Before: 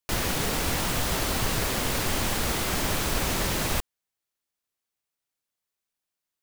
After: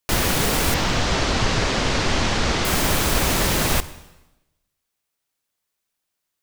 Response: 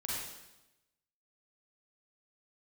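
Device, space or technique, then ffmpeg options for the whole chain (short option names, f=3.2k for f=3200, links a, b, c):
saturated reverb return: -filter_complex "[0:a]asettb=1/sr,asplit=3[a][b][c];[a]atrim=end=0.744[d];[b]atrim=start=0.74:end=2.65,asetpts=PTS-STARTPTS,afade=t=in:d=0.004:c=qsin,afade=t=out:st=1.906:d=0.004:c=qsin,lowpass=f=6.3k:w=0.5412,lowpass=f=6.3k:w=1.3066[e];[c]atrim=start=2.646[f];[d][e]acrossfade=d=0.004:c1=hsin:c2=qsin[g];[g][f]acrossfade=d=0.004:c1=qsin:c2=hsin,asplit=2[h][i];[1:a]atrim=start_sample=2205[j];[i][j]afir=irnorm=-1:irlink=0,asoftclip=type=tanh:threshold=-17.5dB,volume=-15.5dB[k];[h][k]amix=inputs=2:normalize=0,volume=6dB"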